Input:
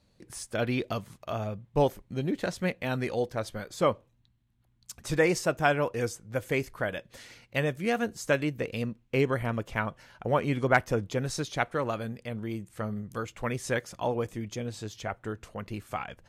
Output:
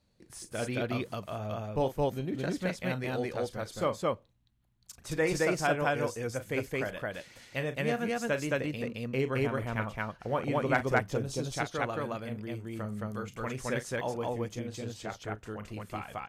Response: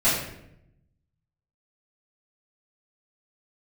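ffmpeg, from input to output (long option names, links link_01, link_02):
-filter_complex "[0:a]asettb=1/sr,asplit=3[link_01][link_02][link_03];[link_01]atrim=end=11.084[link_04];[link_02]atrim=start=11.08:end=11.52,asetpts=PTS-STARTPTS,afade=type=in:duration=0.004:curve=qsin,afade=type=out:start_time=0.436:duration=0.004:curve=qsin,equalizer=frequency=1800:width=1.8:gain=-11.5[link_05];[link_03]atrim=start=11.516[link_06];[link_04][link_05]acrossfade=duration=0.004:curve1=hsin:curve2=qsin[link_07];[link_07][link_06]acrossfade=duration=0.004:curve1=qsin:curve2=hsin,aecho=1:1:37.9|218.7:0.282|1,volume=-5.5dB"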